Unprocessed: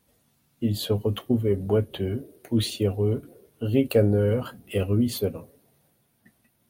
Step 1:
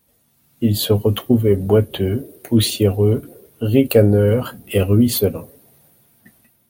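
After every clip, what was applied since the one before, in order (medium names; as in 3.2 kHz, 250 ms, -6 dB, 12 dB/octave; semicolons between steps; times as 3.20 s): treble shelf 12 kHz +11 dB; level rider gain up to 7.5 dB; trim +1.5 dB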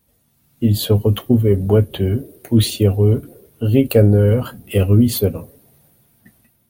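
bass shelf 150 Hz +8 dB; trim -2 dB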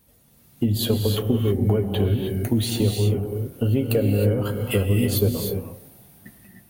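compression 5:1, threshold -23 dBFS, peak gain reduction 14.5 dB; gated-style reverb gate 340 ms rising, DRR 3 dB; trim +3.5 dB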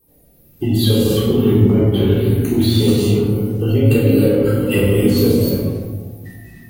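coarse spectral quantiser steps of 30 dB; simulated room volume 710 m³, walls mixed, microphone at 3.7 m; trim -1 dB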